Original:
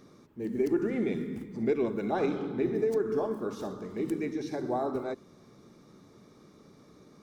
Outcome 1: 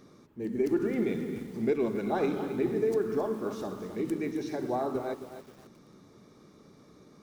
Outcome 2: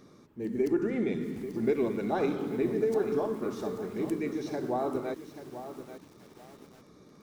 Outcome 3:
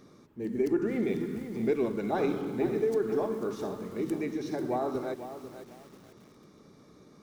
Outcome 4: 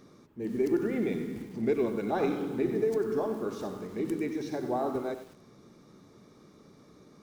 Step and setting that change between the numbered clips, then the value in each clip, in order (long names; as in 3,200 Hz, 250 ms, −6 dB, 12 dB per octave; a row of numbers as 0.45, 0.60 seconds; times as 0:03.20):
feedback echo at a low word length, delay time: 266, 836, 493, 95 milliseconds